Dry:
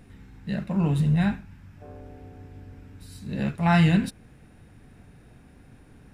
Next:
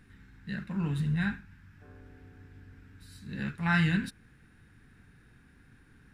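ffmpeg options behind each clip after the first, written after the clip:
-af "equalizer=f=630:t=o:w=0.67:g=-12,equalizer=f=1600:t=o:w=0.67:g=10,equalizer=f=4000:t=o:w=0.67:g=3,volume=0.422"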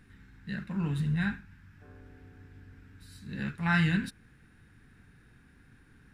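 -af anull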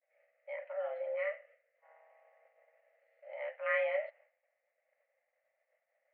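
-af "highpass=f=160:t=q:w=0.5412,highpass=f=160:t=q:w=1.307,lowpass=f=2100:t=q:w=0.5176,lowpass=f=2100:t=q:w=0.7071,lowpass=f=2100:t=q:w=1.932,afreqshift=380,agate=range=0.0224:threshold=0.00251:ratio=3:detection=peak,volume=0.562"

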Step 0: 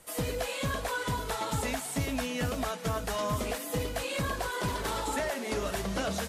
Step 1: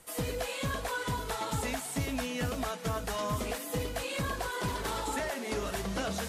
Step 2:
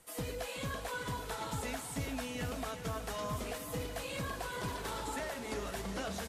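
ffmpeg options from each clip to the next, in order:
-af "bandreject=f=590:w=15,areverse,acompressor=mode=upward:threshold=0.0178:ratio=2.5,areverse,volume=0.841"
-af "aecho=1:1:374|748|1122|1496|1870|2244|2618:0.251|0.151|0.0904|0.0543|0.0326|0.0195|0.0117,volume=0.531"

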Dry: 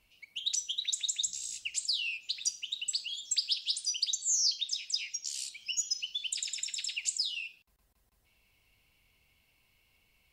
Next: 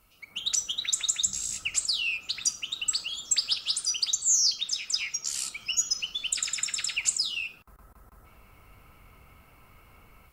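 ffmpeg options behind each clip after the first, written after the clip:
-filter_complex "[0:a]equalizer=f=1300:t=o:w=0.27:g=14.5,acrossover=split=1900[s0][s1];[s0]dynaudnorm=f=180:g=3:m=3.98[s2];[s1]aderivative[s3];[s2][s3]amix=inputs=2:normalize=0,volume=2.24"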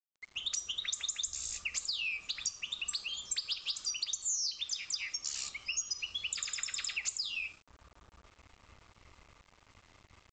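-af "afreqshift=-110,aresample=16000,aeval=exprs='val(0)*gte(abs(val(0)),0.00266)':c=same,aresample=44100,acompressor=threshold=0.0398:ratio=5,volume=0.631"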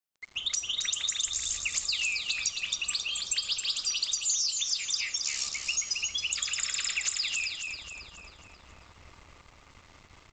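-af "aecho=1:1:270|540|810|1080|1350|1620:0.562|0.264|0.124|0.0584|0.0274|0.0129,volume=1.78"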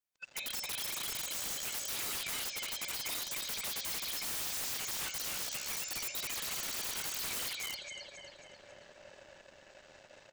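-af "afftfilt=real='real(if(lt(b,1008),b+24*(1-2*mod(floor(b/24),2)),b),0)':imag='imag(if(lt(b,1008),b+24*(1-2*mod(floor(b/24),2)),b),0)':win_size=2048:overlap=0.75,acontrast=51,aeval=exprs='(mod(15.8*val(0)+1,2)-1)/15.8':c=same,volume=0.376"

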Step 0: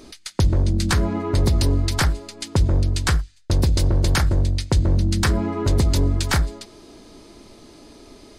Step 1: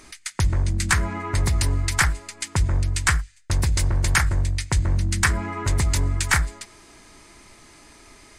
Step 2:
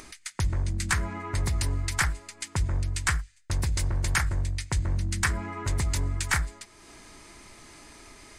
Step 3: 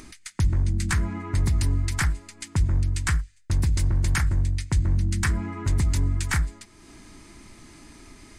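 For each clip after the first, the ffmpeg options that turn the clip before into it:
-af "equalizer=f=250:t=o:w=1:g=-6,equalizer=f=500:t=o:w=1:g=-7,equalizer=f=1000:t=o:w=1:g=3,equalizer=f=2000:t=o:w=1:g=10,equalizer=f=4000:t=o:w=1:g=-5,equalizer=f=8000:t=o:w=1:g=9,volume=0.75"
-af "acompressor=mode=upward:threshold=0.0178:ratio=2.5,volume=0.501"
-af "lowshelf=f=370:t=q:w=1.5:g=6.5,volume=0.841"

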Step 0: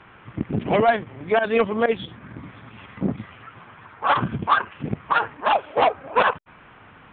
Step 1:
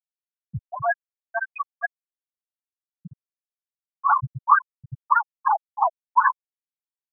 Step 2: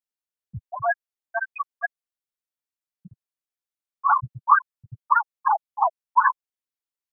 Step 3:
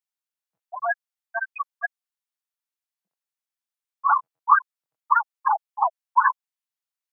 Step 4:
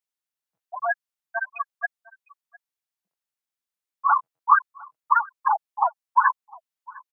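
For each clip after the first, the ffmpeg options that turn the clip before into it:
-af "equalizer=f=125:t=o:w=1:g=12,equalizer=f=250:t=o:w=1:g=-10,equalizer=f=500:t=o:w=1:g=-6,equalizer=f=1000:t=o:w=1:g=11,equalizer=f=2000:t=o:w=1:g=9,afftfilt=real='re*gte(hypot(re,im),1.26)':imag='im*gte(hypot(re,im),1.26)':win_size=1024:overlap=0.75,volume=0.422"
-af "equalizer=f=150:w=2.5:g=-7.5"
-af "highpass=f=700:w=0.5412,highpass=f=700:w=1.3066"
-af "aecho=1:1:705:0.0668"

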